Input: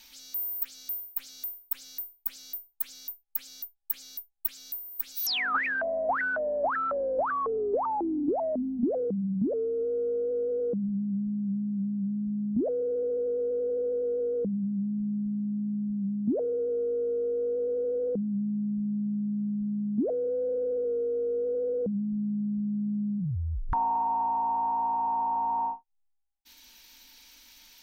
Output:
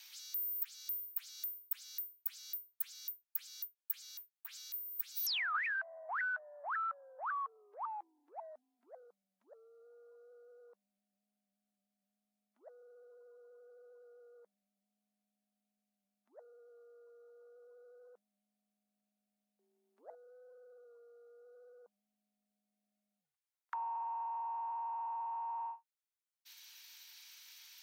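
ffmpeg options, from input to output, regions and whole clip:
-filter_complex "[0:a]asettb=1/sr,asplit=3[a][b][c];[a]atrim=end=4.114[d];[b]atrim=start=4.11:end=4.74,asetpts=PTS-STARTPTS,afade=t=in:d=0.004:c=qsin,afade=t=out:st=0.626:d=0.004:c=qsin,acrossover=split=3600[e][f];[f]acompressor=threshold=-42dB:ratio=4:attack=1:release=60[g];[e][g]amix=inputs=2:normalize=0,acrusher=bits=7:mode=log:mix=0:aa=0.000001[h];[c]atrim=start=4.736[i];[d][h]acrossfade=d=0.004:c1=hsin:c2=qsin[j];[j][i]acrossfade=d=0.004:c1=qsin:c2=hsin,asettb=1/sr,asplit=3[k][l][m];[k]atrim=end=19.594[n];[l]atrim=start=19.59:end=20.15,asetpts=PTS-STARTPTS,afade=t=in:d=0.004:c=qsin,afade=t=out:st=0.556:d=0.004:c=qsin,tremolo=f=180:d=0.519,acontrast=28[o];[m]atrim=start=20.146[p];[n][o]acrossfade=d=0.004:c1=hsin:c2=qsin[q];[q][p]acrossfade=d=0.004:c1=qsin:c2=hsin,highpass=f=1.1k:w=0.5412,highpass=f=1.1k:w=1.3066,acompressor=threshold=-40dB:ratio=1.5,volume=-2.5dB"

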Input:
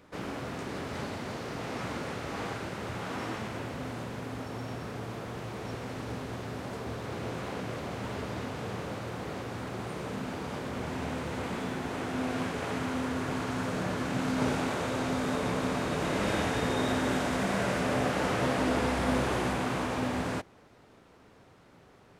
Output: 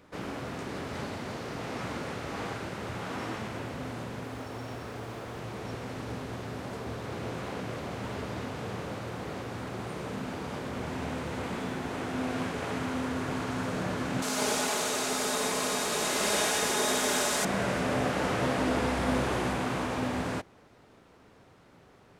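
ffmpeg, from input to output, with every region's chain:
-filter_complex "[0:a]asettb=1/sr,asplit=3[a][b][c];[a]atrim=end=4.254[d];[b]atrim=start=4.25:end=5.39,asetpts=PTS-STARTPTS,afade=t=in:d=0.004:c=qsin,afade=t=out:st=1.136:d=0.004:c=qsin,equalizer=f=170:w=2:g=-6.5,acrusher=bits=8:mode=log:mix=0:aa=0.000001[e];[c]atrim=start=5.386[f];[d][e]acrossfade=d=0.004:c1=hsin:c2=qsin[g];[g][f]acrossfade=d=0.004:c1=qsin:c2=hsin,asettb=1/sr,asplit=3[h][i][j];[h]atrim=end=14.224[k];[i]atrim=start=14.22:end=17.45,asetpts=PTS-STARTPTS,afade=t=in:d=0.004:c=qsin,afade=t=out:st=3.226:d=0.004:c=qsin,bass=f=250:g=-13,treble=f=4k:g=14,aecho=1:1:4.8:0.44,atrim=end_sample=142443,aecho=1:1:96:0.531,atrim=end_sample=142443[l];[j]atrim=start=17.446[m];[k][l]acrossfade=d=0.004:c1=hsin:c2=qsin[n];[n][m]acrossfade=d=0.004:c1=qsin:c2=hsin"

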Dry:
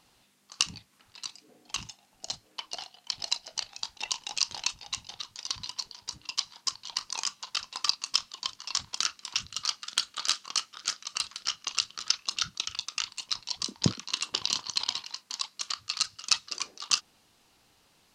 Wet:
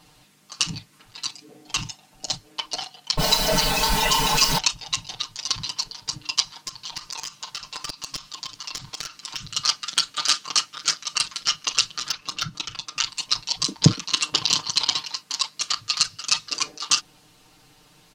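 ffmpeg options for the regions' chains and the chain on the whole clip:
-filter_complex "[0:a]asettb=1/sr,asplit=3[a][b][c];[a]atrim=end=3.174[d];[b]atrim=start=3.17:end=4.58,asetpts=PTS-STARTPTS,afade=t=in:d=0.004:c=qsin,afade=t=out:st=1.406:d=0.004:c=qsin,aeval=exprs='val(0)+0.5*0.0531*sgn(val(0))':c=same,aecho=1:1:4.6:0.99,atrim=end_sample=62181,adynamicequalizer=threshold=0.0112:dfrequency=2000:dqfactor=0.7:tfrequency=2000:tqfactor=0.7:attack=5:release=100:ratio=0.375:range=3:mode=cutabove:tftype=highshelf[e];[c]atrim=start=4.576[f];[d][e]acrossfade=d=0.004:c1=hsin:c2=qsin[g];[g][f]acrossfade=d=0.004:c1=qsin:c2=hsin,asettb=1/sr,asplit=3[h][i][j];[h]atrim=end=6.614[k];[i]atrim=start=6.61:end=9.48,asetpts=PTS-STARTPTS,afade=t=in:d=0.004:c=qsin,afade=t=out:st=2.866:d=0.004:c=qsin,acrusher=bits=9:mode=log:mix=0:aa=0.000001,aeval=exprs='clip(val(0),-1,0.1)':c=same,acompressor=threshold=-36dB:ratio=12:attack=3.2:release=140:knee=1:detection=peak[l];[j]atrim=start=9.476[m];[k][l]acrossfade=d=0.004:c1=hsin:c2=qsin[n];[n][m]acrossfade=d=0.004:c1=qsin:c2=hsin,asettb=1/sr,asplit=3[o][p][q];[o]atrim=end=12.094[r];[p]atrim=start=12.09:end=12.99,asetpts=PTS-STARTPTS,afade=t=in:d=0.004:c=qsin,afade=t=out:st=0.896:d=0.004:c=qsin,highshelf=f=2k:g=-9,acompressor=mode=upward:threshold=-43dB:ratio=2.5:attack=3.2:release=140:knee=2.83:detection=peak,volume=20dB,asoftclip=hard,volume=-20dB[s];[q]atrim=start=12.986[t];[r][s]acrossfade=d=0.004:c1=hsin:c2=qsin[u];[u][t]acrossfade=d=0.004:c1=qsin:c2=hsin,lowshelf=f=240:g=6,aecho=1:1:6.6:0.94,alimiter=level_in=7dB:limit=-1dB:release=50:level=0:latency=1,volume=-1dB"

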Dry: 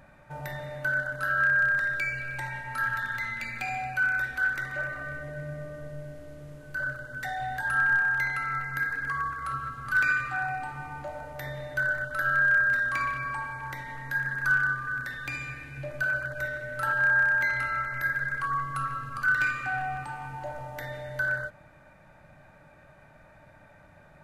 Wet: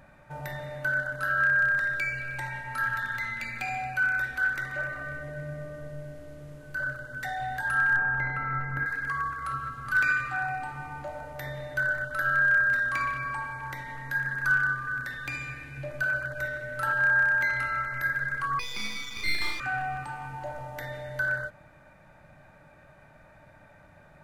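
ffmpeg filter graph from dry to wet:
-filter_complex "[0:a]asettb=1/sr,asplit=3[a][b][c];[a]atrim=end=7.964[d];[b]atrim=start=7.96:end=8.86,asetpts=PTS-STARTPTS,afade=t=in:d=0.004:c=qsin,afade=t=out:st=0.896:d=0.004:c=qsin,acrossover=split=2500[e][f];[f]acompressor=threshold=-51dB:ratio=4:attack=1:release=60[g];[e][g]amix=inputs=2:normalize=0,tiltshelf=f=1.4k:g=7[h];[c]atrim=start=8.856[i];[d][h]acrossfade=d=0.004:c1=hsin:c2=qsin[j];[j][i]acrossfade=d=0.004:c1=qsin:c2=hsin,asettb=1/sr,asplit=3[k][l][m];[k]atrim=end=18.594[n];[l]atrim=start=18.59:end=19.6,asetpts=PTS-STARTPTS,afade=t=in:d=0.004:c=qsin,afade=t=out:st=1.006:d=0.004:c=qsin,lowpass=f=3.1k:t=q:w=0.5098,lowpass=f=3.1k:t=q:w=0.6013,lowpass=f=3.1k:t=q:w=0.9,lowpass=f=3.1k:t=q:w=2.563,afreqshift=-3600,aeval=exprs='max(val(0),0)':c=same,asplit=2[o][p];[p]adelay=37,volume=-4dB[q];[o][q]amix=inputs=2:normalize=0,atrim=end_sample=44541[r];[m]atrim=start=19.596[s];[n][r]acrossfade=d=0.004:c1=hsin:c2=qsin[t];[t][s]acrossfade=d=0.004:c1=qsin:c2=hsin"

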